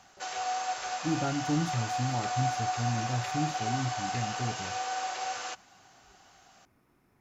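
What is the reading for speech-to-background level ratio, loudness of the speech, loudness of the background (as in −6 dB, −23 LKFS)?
−0.5 dB, −34.0 LKFS, −33.5 LKFS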